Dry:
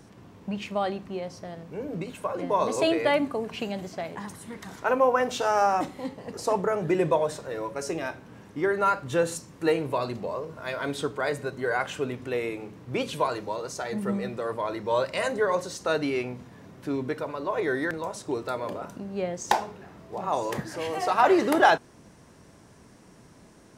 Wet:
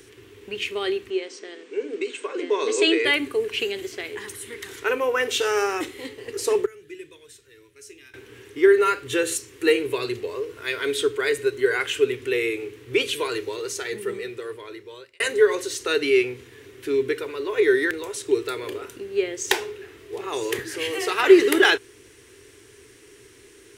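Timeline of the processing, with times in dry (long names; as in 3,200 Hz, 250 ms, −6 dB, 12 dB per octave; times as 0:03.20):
0:01.10–0:03.05: linear-phase brick-wall band-pass 190–8,900 Hz
0:06.66–0:08.14: guitar amp tone stack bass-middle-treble 6-0-2
0:13.70–0:15.20: fade out
whole clip: drawn EQ curve 120 Hz 0 dB, 170 Hz −21 dB, 410 Hz +14 dB, 600 Hz −11 dB, 940 Hz −6 dB, 1,900 Hz +10 dB, 3,100 Hz +13 dB, 5,000 Hz +6 dB, 10,000 Hz +12 dB; level −1 dB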